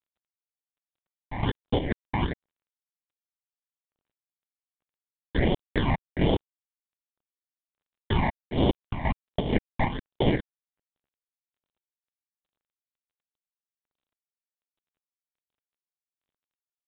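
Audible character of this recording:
chopped level 2.1 Hz, depth 60%, duty 75%
aliases and images of a low sample rate 1,300 Hz, jitter 0%
phaser sweep stages 8, 1.3 Hz, lowest notch 420–1,700 Hz
G.726

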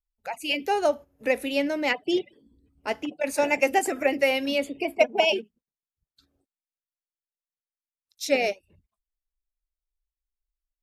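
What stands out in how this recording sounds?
background noise floor −96 dBFS
spectral slope −2.0 dB per octave

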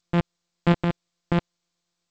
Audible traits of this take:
a buzz of ramps at a fixed pitch in blocks of 256 samples
tremolo saw up 8.3 Hz, depth 45%
G.722

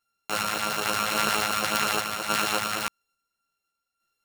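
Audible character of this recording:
a buzz of ramps at a fixed pitch in blocks of 32 samples
sample-and-hold tremolo
a shimmering, thickened sound

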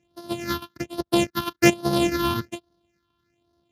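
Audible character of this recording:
a buzz of ramps at a fixed pitch in blocks of 128 samples
phaser sweep stages 6, 1.2 Hz, lowest notch 540–2,300 Hz
Speex

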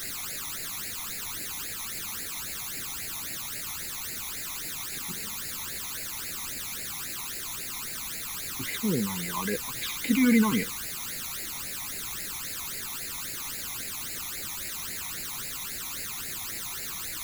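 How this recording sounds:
a quantiser's noise floor 6 bits, dither triangular
phaser sweep stages 12, 3.7 Hz, lowest notch 490–1,100 Hz
AAC

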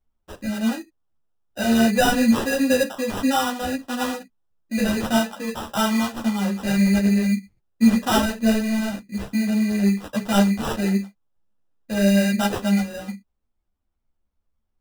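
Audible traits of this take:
aliases and images of a low sample rate 2,200 Hz, jitter 0%
a shimmering, thickened sound

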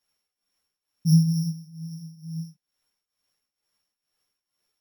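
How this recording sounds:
a buzz of ramps at a fixed pitch in blocks of 8 samples
tremolo triangle 2.2 Hz, depth 85%
a shimmering, thickened sound

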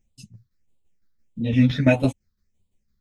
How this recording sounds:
phaser sweep stages 6, 1.6 Hz, lowest notch 710–1,600 Hz
tremolo saw down 5.9 Hz, depth 65%
a shimmering, thickened sound

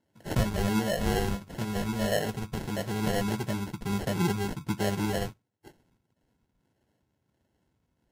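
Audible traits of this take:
phaser sweep stages 12, 1.5 Hz, lowest notch 520–1,100 Hz
aliases and images of a low sample rate 1,200 Hz, jitter 0%
Ogg Vorbis

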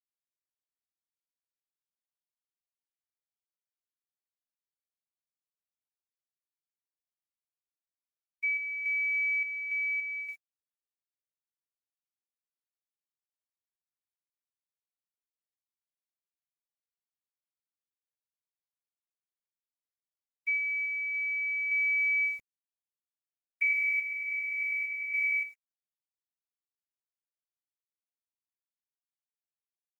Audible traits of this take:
a quantiser's noise floor 10 bits, dither none
sample-and-hold tremolo, depth 65%
Opus

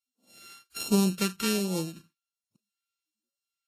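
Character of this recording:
a buzz of ramps at a fixed pitch in blocks of 32 samples
phaser sweep stages 2, 1.3 Hz, lowest notch 600–1,600 Hz
Ogg Vorbis

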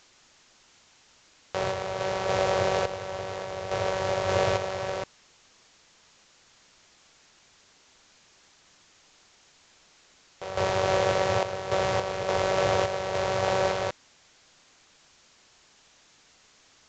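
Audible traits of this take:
sample-and-hold tremolo, depth 75%
a quantiser's noise floor 10 bits, dither triangular
mu-law

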